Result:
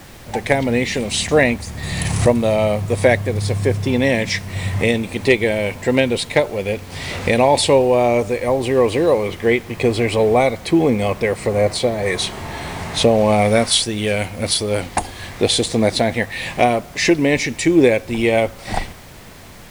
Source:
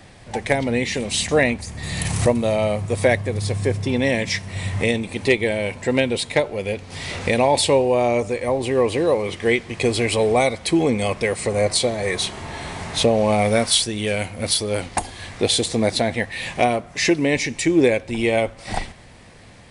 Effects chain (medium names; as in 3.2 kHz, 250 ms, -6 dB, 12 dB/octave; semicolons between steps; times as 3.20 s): treble shelf 3.6 kHz -3 dB, from 9.28 s -11.5 dB, from 12.06 s -3 dB; added noise pink -46 dBFS; trim +3.5 dB